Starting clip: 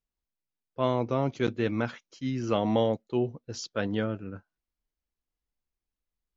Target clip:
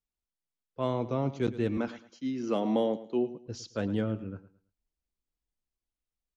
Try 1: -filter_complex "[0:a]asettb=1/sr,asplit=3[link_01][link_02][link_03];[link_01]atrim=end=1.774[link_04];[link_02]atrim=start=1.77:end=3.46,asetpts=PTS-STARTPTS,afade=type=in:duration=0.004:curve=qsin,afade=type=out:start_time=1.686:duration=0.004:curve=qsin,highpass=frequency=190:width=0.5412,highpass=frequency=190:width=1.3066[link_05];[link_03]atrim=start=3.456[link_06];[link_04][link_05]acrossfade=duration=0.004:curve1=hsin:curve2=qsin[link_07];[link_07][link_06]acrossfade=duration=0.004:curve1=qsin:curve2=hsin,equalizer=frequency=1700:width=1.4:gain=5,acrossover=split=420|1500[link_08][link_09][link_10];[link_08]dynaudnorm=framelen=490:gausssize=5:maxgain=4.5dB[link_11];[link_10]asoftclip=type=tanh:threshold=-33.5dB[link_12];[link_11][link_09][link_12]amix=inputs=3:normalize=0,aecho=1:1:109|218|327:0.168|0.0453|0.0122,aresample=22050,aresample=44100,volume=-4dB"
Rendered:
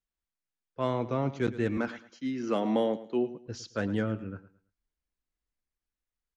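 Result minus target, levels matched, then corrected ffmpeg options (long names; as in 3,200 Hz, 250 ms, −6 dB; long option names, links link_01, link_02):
2,000 Hz band +5.0 dB
-filter_complex "[0:a]asettb=1/sr,asplit=3[link_01][link_02][link_03];[link_01]atrim=end=1.774[link_04];[link_02]atrim=start=1.77:end=3.46,asetpts=PTS-STARTPTS,afade=type=in:duration=0.004:curve=qsin,afade=type=out:start_time=1.686:duration=0.004:curve=qsin,highpass=frequency=190:width=0.5412,highpass=frequency=190:width=1.3066[link_05];[link_03]atrim=start=3.456[link_06];[link_04][link_05]acrossfade=duration=0.004:curve1=hsin:curve2=qsin[link_07];[link_07][link_06]acrossfade=duration=0.004:curve1=qsin:curve2=hsin,equalizer=frequency=1700:width=1.4:gain=-2.5,acrossover=split=420|1500[link_08][link_09][link_10];[link_08]dynaudnorm=framelen=490:gausssize=5:maxgain=4.5dB[link_11];[link_10]asoftclip=type=tanh:threshold=-33.5dB[link_12];[link_11][link_09][link_12]amix=inputs=3:normalize=0,aecho=1:1:109|218|327:0.168|0.0453|0.0122,aresample=22050,aresample=44100,volume=-4dB"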